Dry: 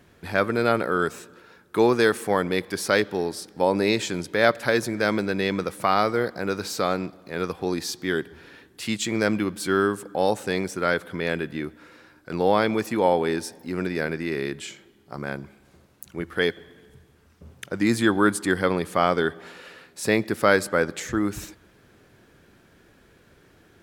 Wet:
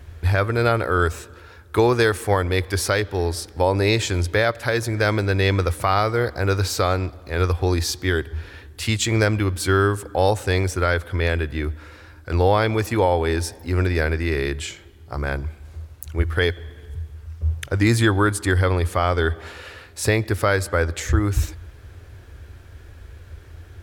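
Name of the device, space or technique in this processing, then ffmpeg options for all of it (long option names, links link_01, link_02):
car stereo with a boomy subwoofer: -af "lowshelf=frequency=120:width_type=q:width=3:gain=13.5,alimiter=limit=-12.5dB:level=0:latency=1:release=437,volume=5.5dB"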